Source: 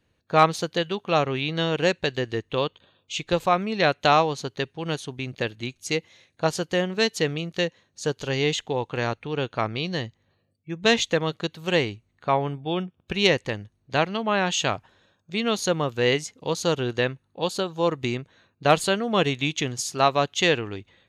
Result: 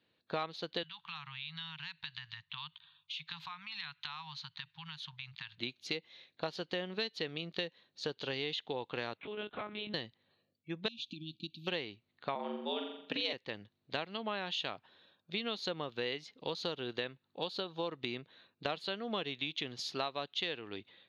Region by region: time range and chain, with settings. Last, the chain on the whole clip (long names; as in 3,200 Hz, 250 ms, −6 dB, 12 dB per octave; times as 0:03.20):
0:00.83–0:05.58: Chebyshev band-stop filter 160–910 Hz, order 4 + downward compressor, threshold −37 dBFS
0:09.17–0:09.94: downward compressor 2.5 to 1, threshold −35 dBFS + double-tracking delay 16 ms −2.5 dB + one-pitch LPC vocoder at 8 kHz 210 Hz
0:10.88–0:11.67: parametric band 2,700 Hz −4.5 dB 2.9 octaves + downward compressor 10 to 1, threshold −28 dBFS + linear-phase brick-wall band-stop 350–2,300 Hz
0:12.35–0:13.33: frequency shifter +87 Hz + flutter between parallel walls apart 7.4 metres, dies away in 0.55 s
whole clip: high-pass filter 180 Hz 12 dB per octave; high shelf with overshoot 5,700 Hz −13.5 dB, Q 3; downward compressor 6 to 1, threshold −28 dBFS; level −6 dB